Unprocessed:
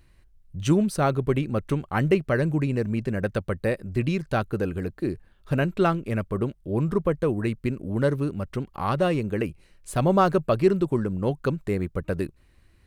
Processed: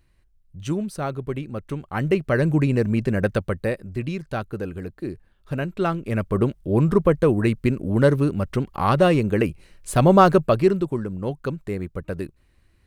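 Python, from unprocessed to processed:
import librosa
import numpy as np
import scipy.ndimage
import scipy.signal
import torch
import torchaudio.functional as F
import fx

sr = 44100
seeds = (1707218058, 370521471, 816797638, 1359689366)

y = fx.gain(x, sr, db=fx.line((1.66, -5.0), (2.55, 5.0), (3.28, 5.0), (4.01, -3.0), (5.74, -3.0), (6.39, 6.0), (10.33, 6.0), (10.99, -2.0)))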